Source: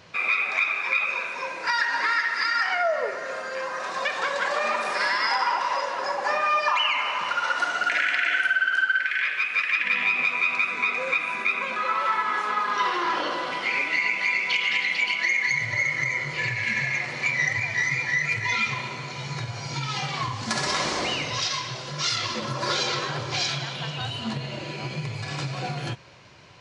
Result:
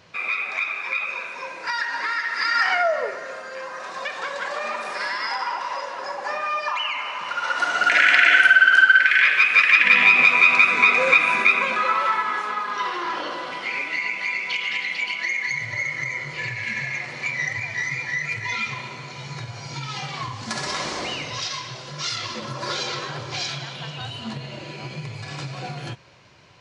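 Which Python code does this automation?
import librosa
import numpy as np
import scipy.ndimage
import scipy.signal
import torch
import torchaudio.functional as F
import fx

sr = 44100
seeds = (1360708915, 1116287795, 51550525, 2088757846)

y = fx.gain(x, sr, db=fx.line((2.19, -2.0), (2.67, 5.0), (3.4, -3.0), (7.22, -3.0), (8.11, 9.0), (11.34, 9.0), (12.64, -2.0)))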